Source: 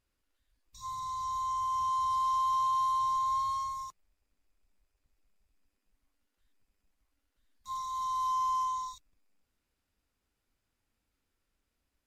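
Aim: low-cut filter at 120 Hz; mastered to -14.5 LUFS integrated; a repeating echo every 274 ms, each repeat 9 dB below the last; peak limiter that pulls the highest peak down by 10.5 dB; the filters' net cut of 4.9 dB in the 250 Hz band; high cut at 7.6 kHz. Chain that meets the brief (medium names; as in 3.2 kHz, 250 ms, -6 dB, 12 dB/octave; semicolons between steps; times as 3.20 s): high-pass 120 Hz; low-pass 7.6 kHz; peaking EQ 250 Hz -7.5 dB; peak limiter -35.5 dBFS; feedback delay 274 ms, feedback 35%, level -9 dB; trim +25.5 dB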